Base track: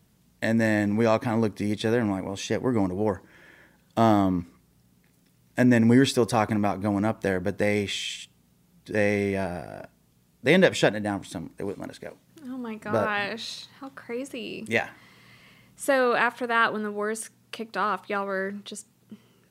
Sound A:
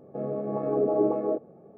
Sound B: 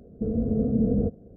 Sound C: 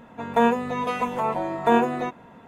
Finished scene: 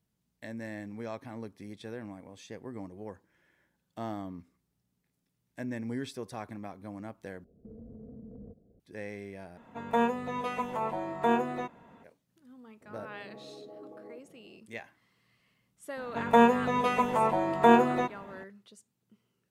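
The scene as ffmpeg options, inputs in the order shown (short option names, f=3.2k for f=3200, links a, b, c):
-filter_complex "[3:a]asplit=2[a][b];[0:a]volume=-17.5dB[c];[2:a]acompressor=threshold=-30dB:ratio=6:attack=3.2:release=140:knee=1:detection=peak[d];[1:a]acompressor=threshold=-36dB:ratio=6:attack=3.2:release=140:knee=1:detection=peak[e];[c]asplit=3[f][g][h];[f]atrim=end=7.444[i];[d]atrim=end=1.36,asetpts=PTS-STARTPTS,volume=-14.5dB[j];[g]atrim=start=8.796:end=9.574[k];[a]atrim=end=2.47,asetpts=PTS-STARTPTS,volume=-7.5dB[l];[h]atrim=start=12.036[m];[e]atrim=end=1.77,asetpts=PTS-STARTPTS,volume=-9.5dB,afade=t=in:d=0.004:c=hsin,afade=t=out:st=1.766:d=0.004:c=hsin,adelay=12810[n];[b]atrim=end=2.47,asetpts=PTS-STARTPTS,volume=-1dB,afade=t=in:d=0.004:c=hsin,afade=t=out:st=2.466:d=0.004:c=hsin,adelay=15970[o];[i][j]acrossfade=d=0.004:c1=hsin:c2=hsin[p];[p][k]acrossfade=d=0.004:c1=hsin:c2=hsin[q];[q][l]acrossfade=d=0.004:c1=hsin:c2=hsin[r];[r][m]acrossfade=d=0.004:c1=hsin:c2=hsin[s];[s][n][o]amix=inputs=3:normalize=0"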